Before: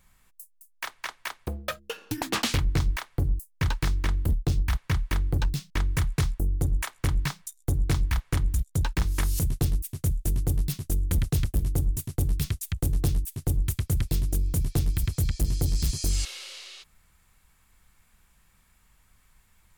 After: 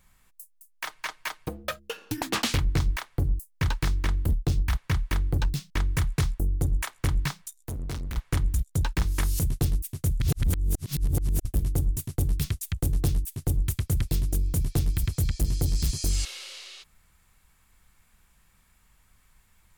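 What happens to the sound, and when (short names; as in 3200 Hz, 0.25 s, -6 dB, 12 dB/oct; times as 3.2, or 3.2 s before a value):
0.85–1.65 comb 6.5 ms, depth 67%
7.38–8.17 hard clip -30.5 dBFS
10.2–11.45 reverse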